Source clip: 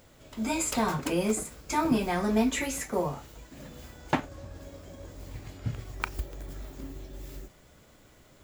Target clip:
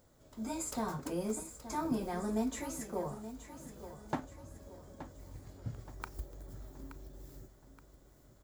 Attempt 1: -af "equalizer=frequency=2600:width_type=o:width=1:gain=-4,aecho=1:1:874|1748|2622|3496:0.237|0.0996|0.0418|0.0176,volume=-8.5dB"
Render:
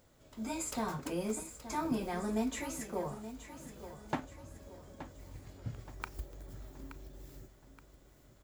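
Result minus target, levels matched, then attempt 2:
2,000 Hz band +3.5 dB
-af "equalizer=frequency=2600:width_type=o:width=1:gain=-11,aecho=1:1:874|1748|2622|3496:0.237|0.0996|0.0418|0.0176,volume=-8.5dB"

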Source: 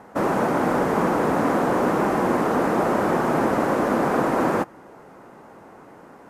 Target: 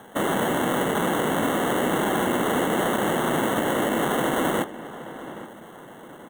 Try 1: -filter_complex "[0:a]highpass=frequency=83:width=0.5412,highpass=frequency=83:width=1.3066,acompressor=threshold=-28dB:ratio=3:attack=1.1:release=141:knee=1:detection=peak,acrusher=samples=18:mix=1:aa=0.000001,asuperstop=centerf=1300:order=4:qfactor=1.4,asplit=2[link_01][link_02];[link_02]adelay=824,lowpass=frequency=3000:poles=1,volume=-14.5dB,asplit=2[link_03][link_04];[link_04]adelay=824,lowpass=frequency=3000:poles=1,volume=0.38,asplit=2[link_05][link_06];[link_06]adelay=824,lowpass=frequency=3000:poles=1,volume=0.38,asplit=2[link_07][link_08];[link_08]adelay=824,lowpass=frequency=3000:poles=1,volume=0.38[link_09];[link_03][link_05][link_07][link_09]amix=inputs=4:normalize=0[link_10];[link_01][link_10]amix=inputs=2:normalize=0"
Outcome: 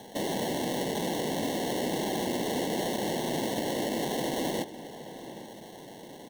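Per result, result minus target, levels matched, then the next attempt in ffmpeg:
downward compressor: peak gain reduction +6.5 dB; 4,000 Hz band +4.5 dB
-filter_complex "[0:a]highpass=frequency=83:width=0.5412,highpass=frequency=83:width=1.3066,acompressor=threshold=-18dB:ratio=3:attack=1.1:release=141:knee=1:detection=peak,acrusher=samples=18:mix=1:aa=0.000001,asuperstop=centerf=1300:order=4:qfactor=1.4,asplit=2[link_01][link_02];[link_02]adelay=824,lowpass=frequency=3000:poles=1,volume=-14.5dB,asplit=2[link_03][link_04];[link_04]adelay=824,lowpass=frequency=3000:poles=1,volume=0.38,asplit=2[link_05][link_06];[link_06]adelay=824,lowpass=frequency=3000:poles=1,volume=0.38,asplit=2[link_07][link_08];[link_08]adelay=824,lowpass=frequency=3000:poles=1,volume=0.38[link_09];[link_03][link_05][link_07][link_09]amix=inputs=4:normalize=0[link_10];[link_01][link_10]amix=inputs=2:normalize=0"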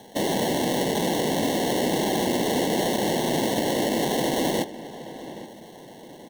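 4,000 Hz band +4.5 dB
-filter_complex "[0:a]highpass=frequency=83:width=0.5412,highpass=frequency=83:width=1.3066,acompressor=threshold=-18dB:ratio=3:attack=1.1:release=141:knee=1:detection=peak,acrusher=samples=18:mix=1:aa=0.000001,asuperstop=centerf=4900:order=4:qfactor=1.4,asplit=2[link_01][link_02];[link_02]adelay=824,lowpass=frequency=3000:poles=1,volume=-14.5dB,asplit=2[link_03][link_04];[link_04]adelay=824,lowpass=frequency=3000:poles=1,volume=0.38,asplit=2[link_05][link_06];[link_06]adelay=824,lowpass=frequency=3000:poles=1,volume=0.38,asplit=2[link_07][link_08];[link_08]adelay=824,lowpass=frequency=3000:poles=1,volume=0.38[link_09];[link_03][link_05][link_07][link_09]amix=inputs=4:normalize=0[link_10];[link_01][link_10]amix=inputs=2:normalize=0"

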